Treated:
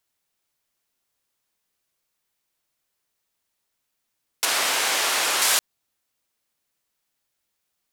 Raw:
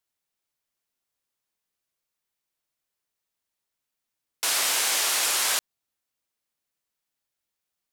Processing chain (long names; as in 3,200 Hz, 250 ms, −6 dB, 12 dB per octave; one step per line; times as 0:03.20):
0:04.45–0:05.42: high-shelf EQ 4,100 Hz −9.5 dB
in parallel at −2 dB: brickwall limiter −19.5 dBFS, peak gain reduction 7.5 dB
on the sum: level +1.5 dB